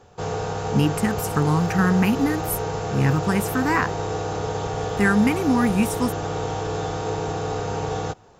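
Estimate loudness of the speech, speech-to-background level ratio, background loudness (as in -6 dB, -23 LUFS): -22.5 LUFS, 5.0 dB, -27.5 LUFS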